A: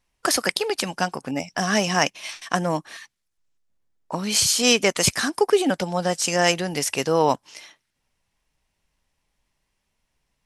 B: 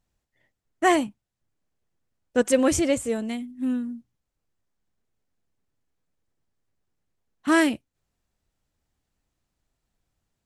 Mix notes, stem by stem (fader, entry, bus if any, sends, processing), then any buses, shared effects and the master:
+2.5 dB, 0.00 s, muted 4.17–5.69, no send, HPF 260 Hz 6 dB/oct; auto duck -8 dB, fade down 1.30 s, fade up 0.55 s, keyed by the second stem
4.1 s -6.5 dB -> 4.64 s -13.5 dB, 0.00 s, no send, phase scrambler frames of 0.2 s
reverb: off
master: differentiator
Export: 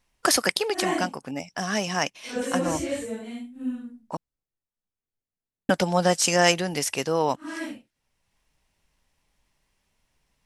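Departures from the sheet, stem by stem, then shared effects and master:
stem A: missing HPF 260 Hz 6 dB/oct; master: missing differentiator

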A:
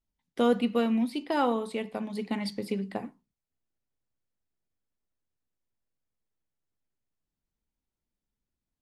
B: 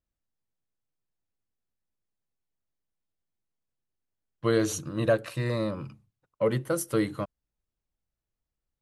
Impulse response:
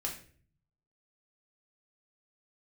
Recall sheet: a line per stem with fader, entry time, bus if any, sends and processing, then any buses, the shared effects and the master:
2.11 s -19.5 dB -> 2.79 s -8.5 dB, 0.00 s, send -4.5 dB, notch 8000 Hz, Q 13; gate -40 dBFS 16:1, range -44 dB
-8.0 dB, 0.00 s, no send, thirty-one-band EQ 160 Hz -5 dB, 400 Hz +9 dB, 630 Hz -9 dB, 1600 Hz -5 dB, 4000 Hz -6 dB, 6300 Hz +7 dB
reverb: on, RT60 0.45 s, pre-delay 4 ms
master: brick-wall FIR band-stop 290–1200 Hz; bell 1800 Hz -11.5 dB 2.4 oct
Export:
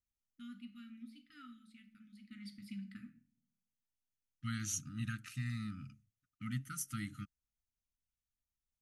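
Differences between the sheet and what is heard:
stem A -19.5 dB -> -26.5 dB; master: missing bell 1800 Hz -11.5 dB 2.4 oct

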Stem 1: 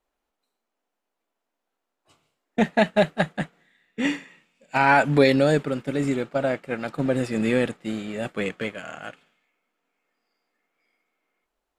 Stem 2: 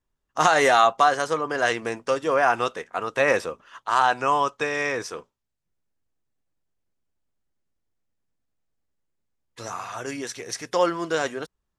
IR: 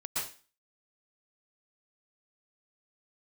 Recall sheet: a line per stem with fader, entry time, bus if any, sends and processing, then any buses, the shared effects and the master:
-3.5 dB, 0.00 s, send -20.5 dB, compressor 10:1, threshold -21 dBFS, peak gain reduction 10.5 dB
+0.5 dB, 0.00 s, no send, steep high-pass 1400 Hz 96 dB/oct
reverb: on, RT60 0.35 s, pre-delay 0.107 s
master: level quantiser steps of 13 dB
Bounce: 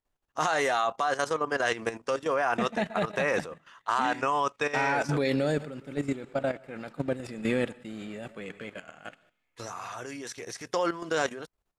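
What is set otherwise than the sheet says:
stem 1: missing compressor 10:1, threshold -21 dBFS, peak gain reduction 10.5 dB; stem 2: missing steep high-pass 1400 Hz 96 dB/oct

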